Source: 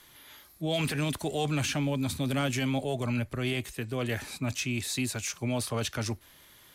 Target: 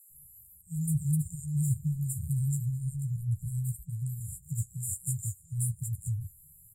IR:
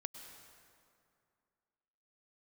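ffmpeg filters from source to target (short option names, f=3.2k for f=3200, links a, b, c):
-filter_complex "[0:a]afftfilt=real='re*(1-between(b*sr/4096,180,7000))':imag='im*(1-between(b*sr/4096,180,7000))':win_size=4096:overlap=0.75,flanger=delay=9:depth=7.5:regen=-30:speed=1.5:shape=triangular,acrossover=split=600|4200[a][b][c];[a]adelay=100[d];[b]adelay=220[e];[d][e][c]amix=inputs=3:normalize=0,volume=7.5dB"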